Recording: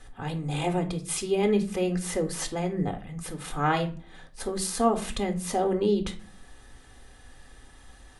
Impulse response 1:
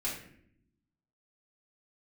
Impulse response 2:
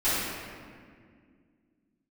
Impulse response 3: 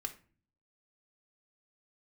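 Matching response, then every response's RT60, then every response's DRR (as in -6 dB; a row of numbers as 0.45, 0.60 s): 3; 0.65, 2.0, 0.40 s; -8.0, -16.5, 5.5 dB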